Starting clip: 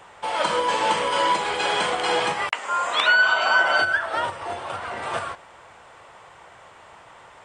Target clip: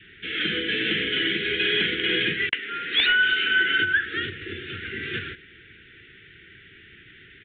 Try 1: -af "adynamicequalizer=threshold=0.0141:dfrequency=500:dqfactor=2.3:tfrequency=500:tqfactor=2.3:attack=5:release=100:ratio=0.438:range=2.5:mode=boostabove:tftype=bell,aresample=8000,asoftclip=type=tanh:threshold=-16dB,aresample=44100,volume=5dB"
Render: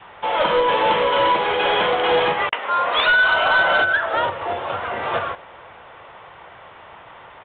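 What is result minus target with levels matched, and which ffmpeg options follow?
1,000 Hz band +16.0 dB
-af "adynamicequalizer=threshold=0.0141:dfrequency=500:dqfactor=2.3:tfrequency=500:tqfactor=2.3:attack=5:release=100:ratio=0.438:range=2.5:mode=boostabove:tftype=bell,asuperstop=centerf=800:order=12:qfactor=0.67,aresample=8000,asoftclip=type=tanh:threshold=-16dB,aresample=44100,volume=5dB"

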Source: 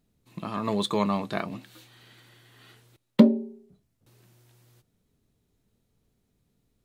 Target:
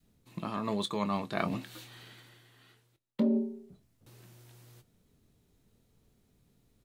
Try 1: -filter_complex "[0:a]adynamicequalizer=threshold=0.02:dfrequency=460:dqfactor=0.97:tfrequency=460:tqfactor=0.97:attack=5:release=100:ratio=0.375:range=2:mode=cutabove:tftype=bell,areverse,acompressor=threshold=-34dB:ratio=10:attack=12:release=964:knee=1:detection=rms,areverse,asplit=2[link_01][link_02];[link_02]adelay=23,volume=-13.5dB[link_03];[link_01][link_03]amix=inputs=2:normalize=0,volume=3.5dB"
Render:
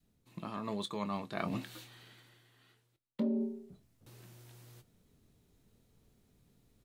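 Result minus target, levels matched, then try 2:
downward compressor: peak gain reduction +5.5 dB
-filter_complex "[0:a]adynamicequalizer=threshold=0.02:dfrequency=460:dqfactor=0.97:tfrequency=460:tqfactor=0.97:attack=5:release=100:ratio=0.375:range=2:mode=cutabove:tftype=bell,areverse,acompressor=threshold=-28dB:ratio=10:attack=12:release=964:knee=1:detection=rms,areverse,asplit=2[link_01][link_02];[link_02]adelay=23,volume=-13.5dB[link_03];[link_01][link_03]amix=inputs=2:normalize=0,volume=3.5dB"

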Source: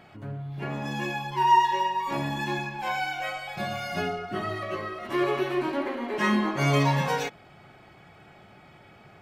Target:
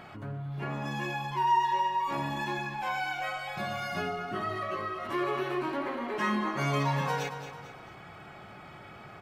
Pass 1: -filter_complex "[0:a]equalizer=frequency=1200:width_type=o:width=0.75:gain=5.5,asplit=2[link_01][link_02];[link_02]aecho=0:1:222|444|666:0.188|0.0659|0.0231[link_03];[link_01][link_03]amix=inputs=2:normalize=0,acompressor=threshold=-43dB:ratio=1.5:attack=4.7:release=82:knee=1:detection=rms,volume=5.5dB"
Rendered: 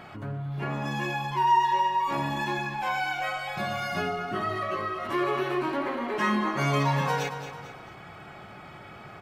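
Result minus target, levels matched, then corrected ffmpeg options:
downward compressor: peak gain reduction −3.5 dB
-filter_complex "[0:a]equalizer=frequency=1200:width_type=o:width=0.75:gain=5.5,asplit=2[link_01][link_02];[link_02]aecho=0:1:222|444|666:0.188|0.0659|0.0231[link_03];[link_01][link_03]amix=inputs=2:normalize=0,acompressor=threshold=-54dB:ratio=1.5:attack=4.7:release=82:knee=1:detection=rms,volume=5.5dB"

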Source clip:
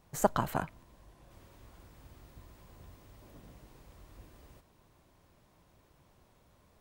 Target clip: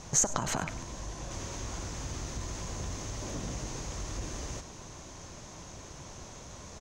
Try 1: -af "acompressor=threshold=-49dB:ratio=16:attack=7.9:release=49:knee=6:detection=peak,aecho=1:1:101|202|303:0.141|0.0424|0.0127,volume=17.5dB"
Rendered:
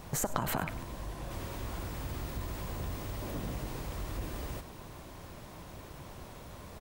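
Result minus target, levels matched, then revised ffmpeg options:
8,000 Hz band −8.0 dB
-af "acompressor=threshold=-49dB:ratio=16:attack=7.9:release=49:knee=6:detection=peak,lowpass=frequency=6400:width_type=q:width=6.8,aecho=1:1:101|202|303:0.141|0.0424|0.0127,volume=17.5dB"

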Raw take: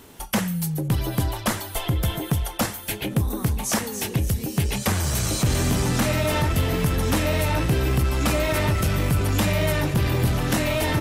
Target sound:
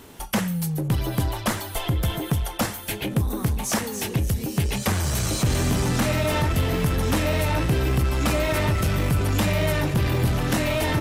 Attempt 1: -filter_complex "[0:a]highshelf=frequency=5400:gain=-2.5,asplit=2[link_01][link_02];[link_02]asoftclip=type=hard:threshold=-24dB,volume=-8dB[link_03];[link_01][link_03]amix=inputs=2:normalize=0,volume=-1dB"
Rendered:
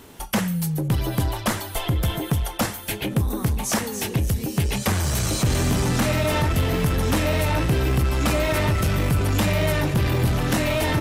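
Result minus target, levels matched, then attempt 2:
hard clipping: distortion −4 dB
-filter_complex "[0:a]highshelf=frequency=5400:gain=-2.5,asplit=2[link_01][link_02];[link_02]asoftclip=type=hard:threshold=-33dB,volume=-8dB[link_03];[link_01][link_03]amix=inputs=2:normalize=0,volume=-1dB"

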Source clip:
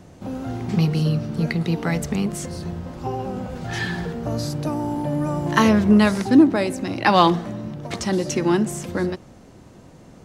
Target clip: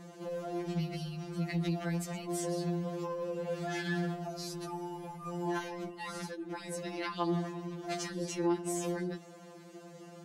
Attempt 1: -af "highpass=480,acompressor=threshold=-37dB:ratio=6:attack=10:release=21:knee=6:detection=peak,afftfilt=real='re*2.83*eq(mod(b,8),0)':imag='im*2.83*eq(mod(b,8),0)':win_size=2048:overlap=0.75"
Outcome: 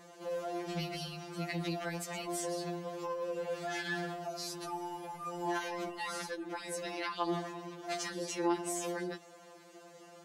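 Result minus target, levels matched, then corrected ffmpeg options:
250 Hz band −3.0 dB
-af "highpass=220,acompressor=threshold=-37dB:ratio=6:attack=10:release=21:knee=6:detection=peak,afftfilt=real='re*2.83*eq(mod(b,8),0)':imag='im*2.83*eq(mod(b,8),0)':win_size=2048:overlap=0.75"

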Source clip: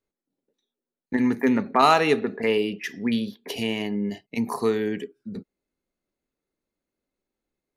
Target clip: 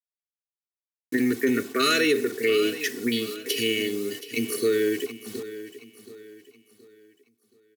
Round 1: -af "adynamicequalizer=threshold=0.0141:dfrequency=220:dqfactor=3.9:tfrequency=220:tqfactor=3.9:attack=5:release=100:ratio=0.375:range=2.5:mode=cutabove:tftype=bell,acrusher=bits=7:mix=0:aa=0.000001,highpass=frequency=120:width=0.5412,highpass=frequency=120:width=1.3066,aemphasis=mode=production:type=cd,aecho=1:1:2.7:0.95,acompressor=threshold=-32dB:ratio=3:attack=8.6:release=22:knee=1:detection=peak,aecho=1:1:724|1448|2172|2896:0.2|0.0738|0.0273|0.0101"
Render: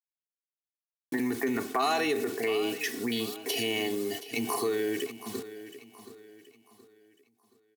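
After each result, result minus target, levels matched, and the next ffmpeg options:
1,000 Hz band +7.0 dB; downward compressor: peak gain reduction +7 dB
-af "adynamicequalizer=threshold=0.0141:dfrequency=220:dqfactor=3.9:tfrequency=220:tqfactor=3.9:attack=5:release=100:ratio=0.375:range=2.5:mode=cutabove:tftype=bell,asuperstop=centerf=860:order=12:qfactor=1.3,acrusher=bits=7:mix=0:aa=0.000001,highpass=frequency=120:width=0.5412,highpass=frequency=120:width=1.3066,aemphasis=mode=production:type=cd,aecho=1:1:2.7:0.95,acompressor=threshold=-32dB:ratio=3:attack=8.6:release=22:knee=1:detection=peak,aecho=1:1:724|1448|2172|2896:0.2|0.0738|0.0273|0.0101"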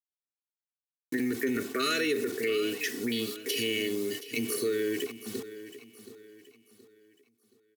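downward compressor: peak gain reduction +7 dB
-af "adynamicequalizer=threshold=0.0141:dfrequency=220:dqfactor=3.9:tfrequency=220:tqfactor=3.9:attack=5:release=100:ratio=0.375:range=2.5:mode=cutabove:tftype=bell,asuperstop=centerf=860:order=12:qfactor=1.3,acrusher=bits=7:mix=0:aa=0.000001,highpass=frequency=120:width=0.5412,highpass=frequency=120:width=1.3066,aemphasis=mode=production:type=cd,aecho=1:1:2.7:0.95,acompressor=threshold=-21.5dB:ratio=3:attack=8.6:release=22:knee=1:detection=peak,aecho=1:1:724|1448|2172|2896:0.2|0.0738|0.0273|0.0101"

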